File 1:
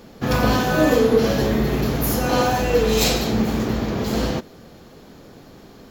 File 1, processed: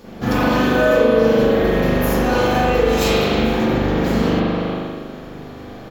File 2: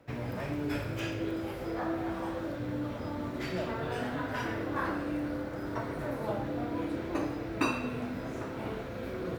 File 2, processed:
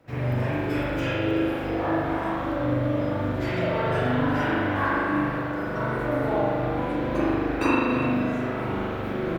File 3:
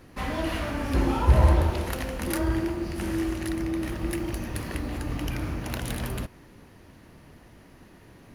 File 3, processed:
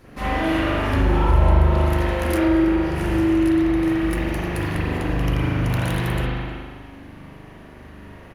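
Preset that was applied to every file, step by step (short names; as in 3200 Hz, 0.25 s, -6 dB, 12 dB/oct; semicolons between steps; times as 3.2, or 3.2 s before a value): speakerphone echo 0.31 s, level -8 dB; spring tank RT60 1.5 s, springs 40 ms, chirp 75 ms, DRR -9 dB; compressor 2:1, threshold -17 dBFS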